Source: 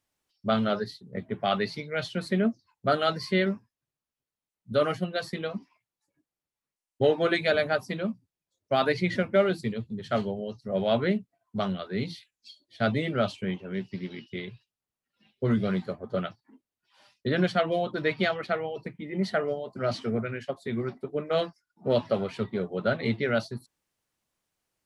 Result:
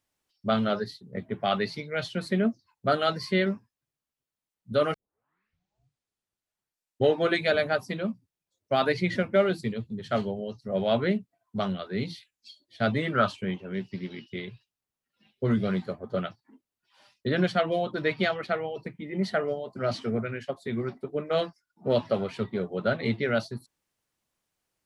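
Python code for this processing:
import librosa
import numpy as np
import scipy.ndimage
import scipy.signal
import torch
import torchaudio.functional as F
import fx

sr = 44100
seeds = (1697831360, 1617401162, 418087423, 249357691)

y = fx.band_shelf(x, sr, hz=1300.0, db=8.5, octaves=1.1, at=(12.95, 13.36))
y = fx.edit(y, sr, fx.tape_start(start_s=4.94, length_s=2.12), tone=tone)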